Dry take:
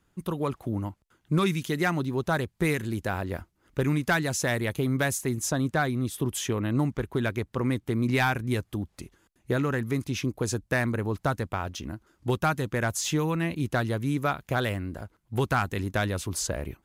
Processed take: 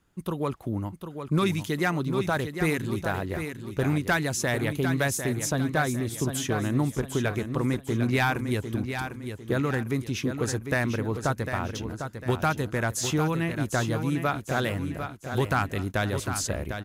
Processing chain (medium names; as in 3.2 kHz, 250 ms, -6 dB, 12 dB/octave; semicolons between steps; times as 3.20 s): feedback delay 751 ms, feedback 38%, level -8 dB